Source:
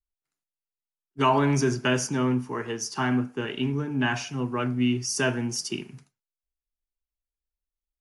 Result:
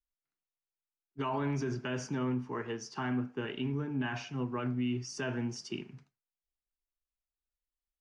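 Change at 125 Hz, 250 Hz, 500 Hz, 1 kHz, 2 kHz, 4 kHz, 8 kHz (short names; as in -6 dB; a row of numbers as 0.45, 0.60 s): -8.0, -8.5, -9.5, -11.5, -11.0, -12.0, -15.5 dB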